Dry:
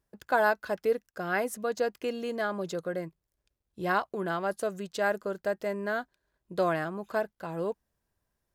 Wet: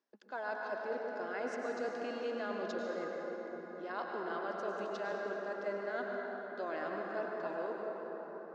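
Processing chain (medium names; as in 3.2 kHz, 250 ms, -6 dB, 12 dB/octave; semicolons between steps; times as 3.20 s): elliptic band-pass 250–5700 Hz, stop band 40 dB; reverse; compression, threshold -35 dBFS, peak gain reduction 14.5 dB; reverse; reverberation RT60 5.8 s, pre-delay 88 ms, DRR -1.5 dB; trim -3 dB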